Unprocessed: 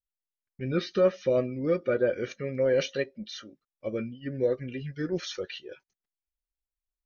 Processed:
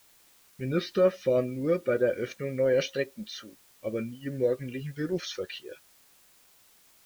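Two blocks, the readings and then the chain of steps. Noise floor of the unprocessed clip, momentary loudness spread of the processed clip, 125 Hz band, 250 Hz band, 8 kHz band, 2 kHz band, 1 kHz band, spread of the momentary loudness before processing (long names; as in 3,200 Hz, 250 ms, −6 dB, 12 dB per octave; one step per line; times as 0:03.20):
below −85 dBFS, 14 LU, 0.0 dB, 0.0 dB, can't be measured, 0.0 dB, 0.0 dB, 14 LU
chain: bit-depth reduction 10 bits, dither triangular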